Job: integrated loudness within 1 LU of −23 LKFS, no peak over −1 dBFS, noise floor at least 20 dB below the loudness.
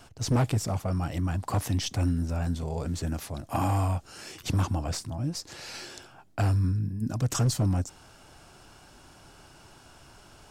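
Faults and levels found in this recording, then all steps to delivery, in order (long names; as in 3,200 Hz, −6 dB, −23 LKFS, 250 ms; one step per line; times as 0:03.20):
share of clipped samples 1.3%; peaks flattened at −19.5 dBFS; integrated loudness −29.5 LKFS; sample peak −19.5 dBFS; target loudness −23.0 LKFS
→ clipped peaks rebuilt −19.5 dBFS
level +6.5 dB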